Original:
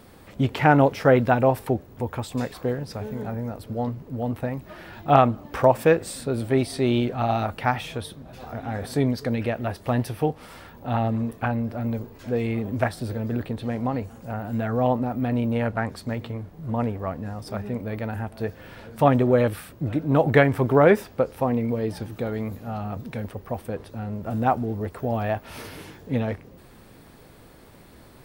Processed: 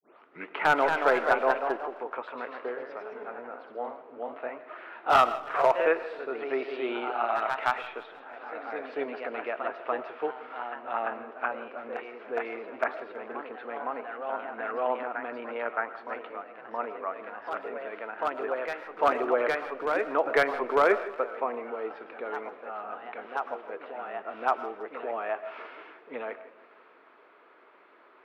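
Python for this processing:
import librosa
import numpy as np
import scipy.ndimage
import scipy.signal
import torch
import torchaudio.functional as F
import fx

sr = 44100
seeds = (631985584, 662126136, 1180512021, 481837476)

y = fx.tape_start_head(x, sr, length_s=0.58)
y = fx.cabinet(y, sr, low_hz=440.0, low_slope=24, high_hz=2400.0, hz=(530.0, 780.0, 1300.0, 1800.0), db=(-8, -6, 4, -4))
y = np.clip(y, -10.0 ** (-13.5 / 20.0), 10.0 ** (-13.5 / 20.0))
y = fx.echo_feedback(y, sr, ms=162, feedback_pct=55, wet_db=-18.5)
y = fx.echo_pitch(y, sr, ms=266, semitones=1, count=2, db_per_echo=-6.0)
y = fx.rev_freeverb(y, sr, rt60_s=0.51, hf_ratio=0.6, predelay_ms=70, drr_db=15.0)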